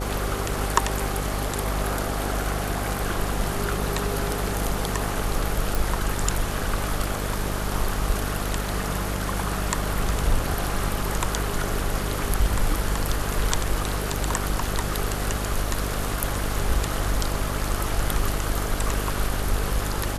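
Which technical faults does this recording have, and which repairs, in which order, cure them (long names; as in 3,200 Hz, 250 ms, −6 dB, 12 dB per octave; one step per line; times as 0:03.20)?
mains buzz 50 Hz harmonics 14 −29 dBFS
0:05.75: click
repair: click removal
hum removal 50 Hz, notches 14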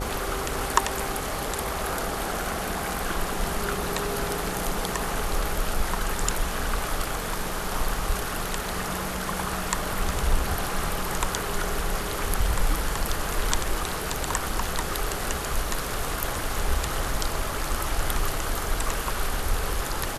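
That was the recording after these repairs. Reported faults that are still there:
none of them is left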